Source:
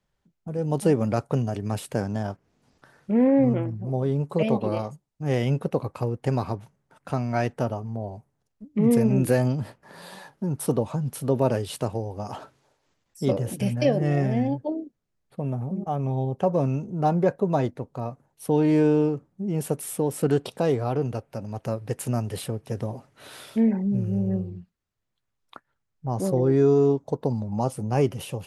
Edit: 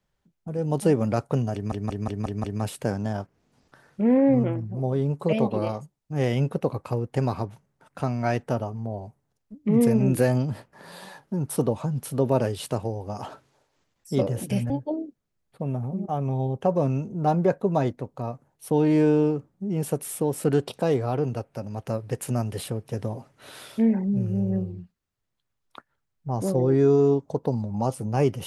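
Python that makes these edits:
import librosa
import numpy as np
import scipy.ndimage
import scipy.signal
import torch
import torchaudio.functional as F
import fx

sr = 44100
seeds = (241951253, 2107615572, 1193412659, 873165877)

y = fx.edit(x, sr, fx.stutter(start_s=1.54, slice_s=0.18, count=6),
    fx.cut(start_s=13.8, length_s=0.68), tone=tone)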